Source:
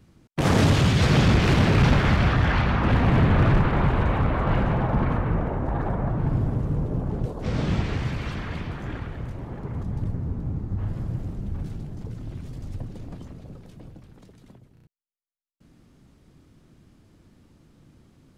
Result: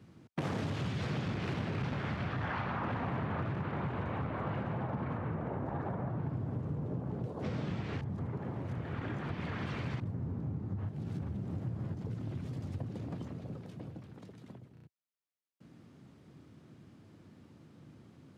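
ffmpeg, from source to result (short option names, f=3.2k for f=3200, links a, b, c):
-filter_complex "[0:a]asettb=1/sr,asplit=3[a][b][c];[a]atrim=end=2.414[d];[b]atrim=start=2.41:end=3.42,asetpts=PTS-STARTPTS,afade=t=in:d=0.004:c=qsin,afade=t=out:st=1.006:d=0.004:c=qsin,equalizer=f=1k:t=o:w=1.8:g=6[e];[c]atrim=start=3.416[f];[d][e]acrossfade=d=0.004:c1=hsin:c2=qsin[g];[g][f]acrossfade=d=0.004:c1=qsin:c2=hsin,asplit=5[h][i][j][k][l];[h]atrim=end=8.012[m];[i]atrim=start=8.008:end=10.002,asetpts=PTS-STARTPTS,areverse[n];[j]atrim=start=9.998:end=10.892[o];[k]atrim=start=10.888:end=11.942,asetpts=PTS-STARTPTS,areverse[p];[l]atrim=start=11.938[q];[m][n]acrossfade=d=0.004:c1=hsin:c2=hsin[r];[r][o]acrossfade=d=0.004:c1=hsin:c2=hsin[s];[s][p]acrossfade=d=0.004:c1=hsin:c2=hsin[t];[t][q]acrossfade=d=0.004:c1=hsin:c2=hsin,highpass=f=91:w=0.5412,highpass=f=91:w=1.3066,highshelf=f=5.5k:g=-9.5,acompressor=threshold=-34dB:ratio=6"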